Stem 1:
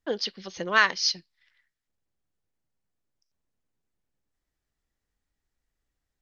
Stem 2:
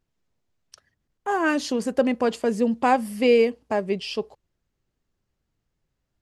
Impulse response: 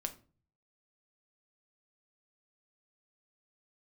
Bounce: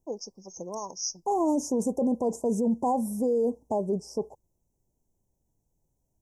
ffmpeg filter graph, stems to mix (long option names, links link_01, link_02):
-filter_complex "[0:a]highshelf=frequency=4100:gain=11.5,volume=-5.5dB[link_01];[1:a]volume=1dB[link_02];[link_01][link_02]amix=inputs=2:normalize=0,asuperstop=centerf=2400:order=20:qfactor=0.52,alimiter=limit=-19dB:level=0:latency=1:release=15"